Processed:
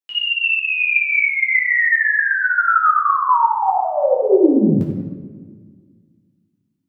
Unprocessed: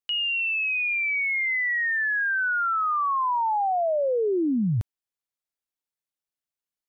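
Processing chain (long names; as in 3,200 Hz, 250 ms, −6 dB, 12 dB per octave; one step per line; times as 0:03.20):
high-pass filter 130 Hz 12 dB per octave
0:02.98–0:04.32: gate pattern "xx.xxxx." 199 BPM
flanger 1.3 Hz, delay 9.5 ms, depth 5.1 ms, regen −36%
convolution reverb RT60 1.8 s, pre-delay 6 ms, DRR −5 dB
expander for the loud parts 1.5 to 1, over −33 dBFS
level +9 dB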